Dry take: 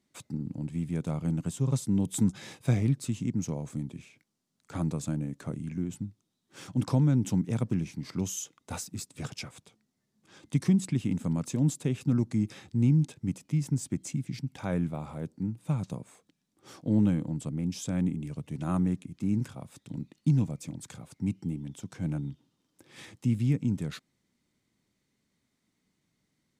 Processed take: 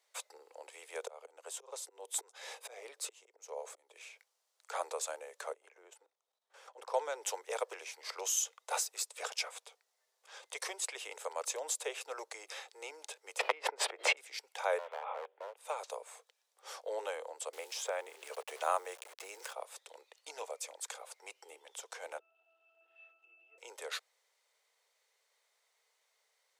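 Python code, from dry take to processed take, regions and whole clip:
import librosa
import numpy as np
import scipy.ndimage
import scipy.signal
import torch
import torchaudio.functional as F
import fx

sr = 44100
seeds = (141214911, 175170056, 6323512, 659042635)

y = fx.chain(x, sr, fx.auto_swell(attack_ms=472.0),
    fx.low_shelf(hz=480.0, db=7.0), at=(1.01, 3.96))
y = fx.chain(y, sr, fx.high_shelf(hz=2100.0, db=-10.5),
    fx.level_steps(step_db=12), at=(5.53, 6.94))
y = fx.chain(y, sr, fx.air_absorb(metres=440.0),
    fx.pre_swell(db_per_s=24.0), at=(13.39, 14.17))
y = fx.chain(y, sr, fx.cheby1_lowpass(hz=3400.0, order=6),
    fx.clip_hard(threshold_db=-35.5),
    fx.band_squash(depth_pct=70), at=(14.78, 15.56))
y = fx.chain(y, sr, fx.sample_gate(floor_db=-52.0),
    fx.band_squash(depth_pct=70), at=(17.53, 19.53))
y = fx.chain(y, sr, fx.zero_step(step_db=-43.0),
    fx.peak_eq(hz=2700.0, db=11.5, octaves=0.42),
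    fx.octave_resonator(note='E', decay_s=0.69), at=(22.19, 23.58))
y = scipy.signal.sosfilt(scipy.signal.butter(12, 450.0, 'highpass', fs=sr, output='sos'), y)
y = fx.peak_eq(y, sr, hz=880.0, db=2.5, octaves=0.45)
y = y * 10.0 ** (4.0 / 20.0)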